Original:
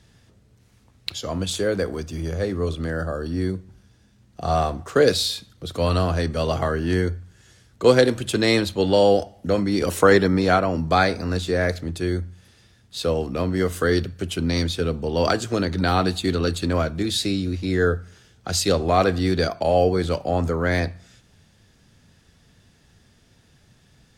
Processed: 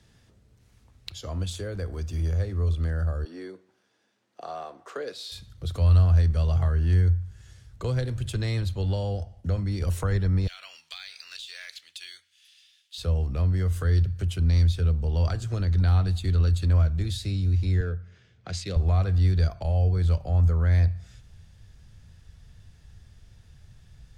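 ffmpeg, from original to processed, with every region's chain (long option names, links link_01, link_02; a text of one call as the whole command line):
ffmpeg -i in.wav -filter_complex "[0:a]asettb=1/sr,asplit=3[link_01][link_02][link_03];[link_01]atrim=end=3.244[link_04];[link_02]atrim=start=3.24:end=5.32,asetpts=PTS-STARTPTS,afade=type=in:duration=0.004:curve=qsin,afade=type=out:start_time=2.076:duration=0.004:curve=qsin,highpass=frequency=300:width=0.5412,highpass=frequency=300:width=1.3066,highshelf=frequency=5700:gain=-10.5[link_05];[link_03]atrim=start=5.316[link_06];[link_04][link_05]acrossfade=duration=0.004:curve1=hsin:curve2=qsin[link_07];[link_07][link_06]acrossfade=duration=0.004:curve1=qsin:curve2=hsin,asettb=1/sr,asplit=3[link_08][link_09][link_10];[link_08]atrim=end=8.884[link_11];[link_09]atrim=start=8.88:end=9.58,asetpts=PTS-STARTPTS,afade=type=in:duration=0.004:curve=qsin,afade=type=out:start_time=0.696:duration=0.004:curve=qsin,lowpass=11000,agate=range=-33dB:threshold=-49dB:ratio=3:release=100:detection=peak[link_12];[link_10]atrim=start=9.576[link_13];[link_11][link_12]acrossfade=duration=0.004:curve1=hsin:curve2=qsin[link_14];[link_14][link_13]acrossfade=duration=0.004:curve1=qsin:curve2=hsin,asettb=1/sr,asplit=3[link_15][link_16][link_17];[link_15]atrim=end=10.474[link_18];[link_16]atrim=start=10.47:end=12.98,asetpts=PTS-STARTPTS,afade=type=in:duration=0.004:curve=qsin,afade=type=out:start_time=2.506:duration=0.004:curve=qsin,highpass=frequency=3000:width_type=q:width=2.7,acompressor=threshold=-28dB:ratio=5:attack=3.2:release=140:knee=1:detection=peak,acrusher=bits=7:mode=log:mix=0:aa=0.000001[link_19];[link_17]atrim=start=12.976[link_20];[link_18][link_19]acrossfade=duration=0.004:curve1=hsin:curve2=qsin[link_21];[link_21][link_20]acrossfade=duration=0.004:curve1=qsin:curve2=hsin,asettb=1/sr,asplit=3[link_22][link_23][link_24];[link_22]atrim=end=17.804[link_25];[link_23]atrim=start=17.8:end=18.76,asetpts=PTS-STARTPTS,afade=type=in:duration=0.004:curve=qsin,afade=type=out:start_time=0.956:duration=0.004:curve=qsin,adynamicsmooth=sensitivity=3:basefreq=3800,highpass=160,equalizer=frequency=850:width_type=q:width=4:gain=-8,equalizer=frequency=1300:width_type=q:width=4:gain=-4,equalizer=frequency=2200:width_type=q:width=4:gain=4,lowpass=frequency=10000:width=0.5412,lowpass=frequency=10000:width=1.3066[link_26];[link_24]atrim=start=18.756[link_27];[link_25][link_26]acrossfade=duration=0.004:curve1=hsin:curve2=qsin[link_28];[link_28][link_27]acrossfade=duration=0.004:curve1=qsin:curve2=hsin,asubboost=boost=8.5:cutoff=87,acrossover=split=160[link_29][link_30];[link_30]acompressor=threshold=-34dB:ratio=2.5[link_31];[link_29][link_31]amix=inputs=2:normalize=0,volume=-4dB" out.wav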